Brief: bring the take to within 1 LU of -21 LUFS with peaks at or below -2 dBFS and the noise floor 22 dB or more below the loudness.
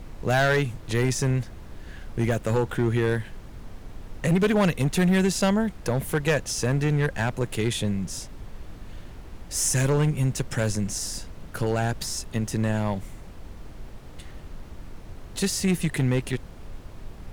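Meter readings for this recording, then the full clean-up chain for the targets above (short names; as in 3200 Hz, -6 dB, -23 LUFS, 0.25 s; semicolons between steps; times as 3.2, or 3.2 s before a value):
clipped 1.4%; flat tops at -16.0 dBFS; noise floor -42 dBFS; noise floor target -47 dBFS; loudness -25.0 LUFS; peak -16.0 dBFS; loudness target -21.0 LUFS
-> clip repair -16 dBFS; noise print and reduce 6 dB; gain +4 dB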